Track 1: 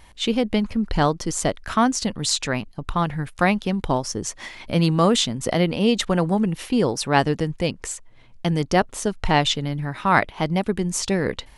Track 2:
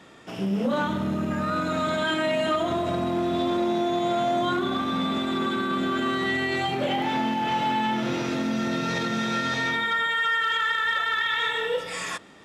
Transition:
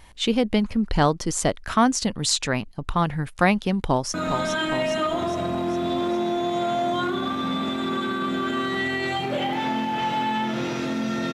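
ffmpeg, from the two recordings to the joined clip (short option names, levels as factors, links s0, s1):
-filter_complex "[0:a]apad=whole_dur=11.33,atrim=end=11.33,atrim=end=4.142[s0];[1:a]atrim=start=1.628:end=8.82[s1];[s0][s1]acrossfade=d=0.004:c1=hsin:c2=hsin,asplit=2[s2][s3];[s3]afade=t=in:st=3.86:d=0.01,afade=t=out:st=4.14:d=0.01,aecho=0:1:410|820|1230|1640|2050|2460|2870|3280:0.473151|0.283891|0.170334|0.102201|0.0613204|0.0367922|0.0220753|0.0132452[s4];[s2][s4]amix=inputs=2:normalize=0"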